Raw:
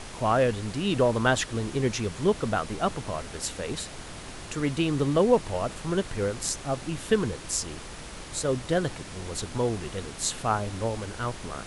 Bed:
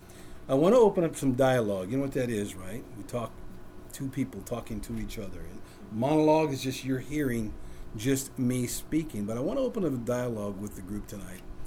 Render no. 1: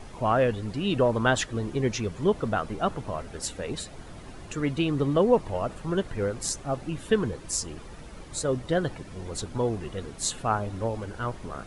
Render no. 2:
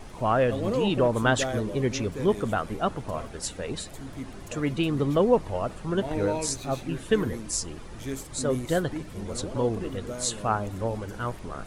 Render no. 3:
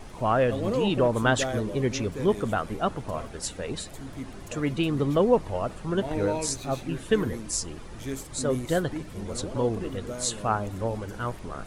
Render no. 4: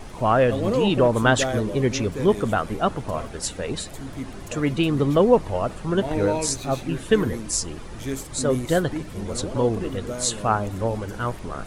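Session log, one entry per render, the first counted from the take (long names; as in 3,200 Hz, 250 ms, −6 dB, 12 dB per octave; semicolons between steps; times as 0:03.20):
broadband denoise 11 dB, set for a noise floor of −41 dBFS
mix in bed −7 dB
no processing that can be heard
level +4.5 dB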